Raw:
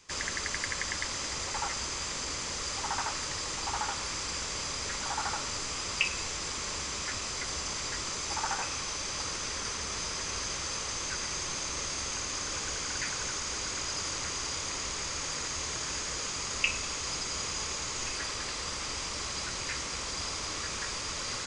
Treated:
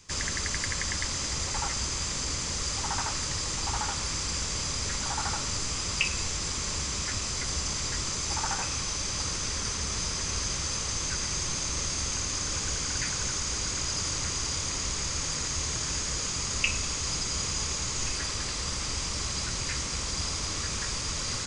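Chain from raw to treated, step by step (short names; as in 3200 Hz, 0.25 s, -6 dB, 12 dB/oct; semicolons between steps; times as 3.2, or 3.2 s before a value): tone controls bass +10 dB, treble +5 dB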